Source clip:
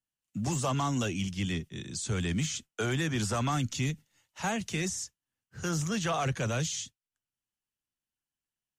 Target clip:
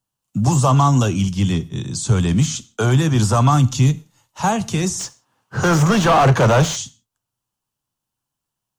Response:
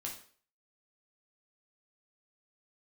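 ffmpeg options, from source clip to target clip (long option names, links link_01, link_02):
-filter_complex "[0:a]equalizer=frequency=125:width_type=o:width=1:gain=7,equalizer=frequency=1000:width_type=o:width=1:gain=8,equalizer=frequency=2000:width_type=o:width=1:gain=-9,asplit=3[link_01][link_02][link_03];[link_01]afade=type=out:start_time=4.99:duration=0.02[link_04];[link_02]asplit=2[link_05][link_06];[link_06]highpass=frequency=720:poles=1,volume=27dB,asoftclip=type=tanh:threshold=-16dB[link_07];[link_05][link_07]amix=inputs=2:normalize=0,lowpass=frequency=1300:poles=1,volume=-6dB,afade=type=in:start_time=4.99:duration=0.02,afade=type=out:start_time=6.75:duration=0.02[link_08];[link_03]afade=type=in:start_time=6.75:duration=0.02[link_09];[link_04][link_08][link_09]amix=inputs=3:normalize=0,asplit=2[link_10][link_11];[1:a]atrim=start_sample=2205,afade=type=out:start_time=0.23:duration=0.01,atrim=end_sample=10584[link_12];[link_11][link_12]afir=irnorm=-1:irlink=0,volume=-10.5dB[link_13];[link_10][link_13]amix=inputs=2:normalize=0,volume=9dB"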